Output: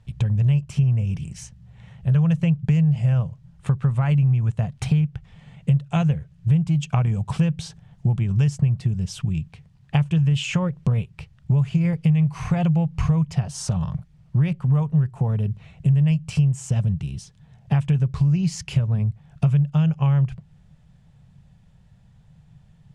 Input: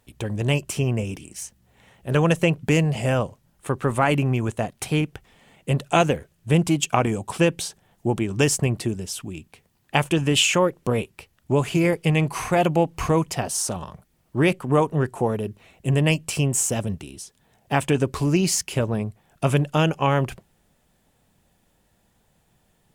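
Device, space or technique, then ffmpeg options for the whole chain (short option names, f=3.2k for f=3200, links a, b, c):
jukebox: -af "lowpass=5.7k,lowshelf=f=210:t=q:w=3:g=12,acompressor=threshold=-19dB:ratio=4"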